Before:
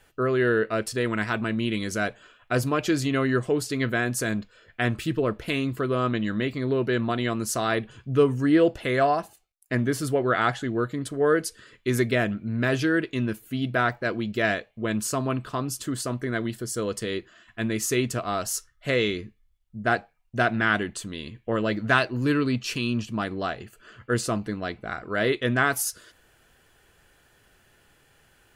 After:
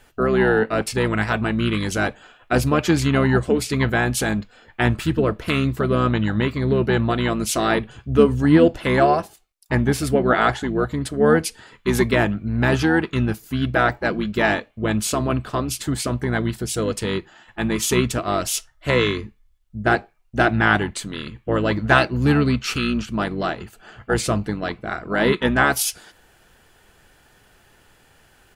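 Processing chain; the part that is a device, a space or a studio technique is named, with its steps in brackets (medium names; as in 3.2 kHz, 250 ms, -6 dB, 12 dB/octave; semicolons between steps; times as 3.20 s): octave pedal (harmony voices -12 st -6 dB); trim +4.5 dB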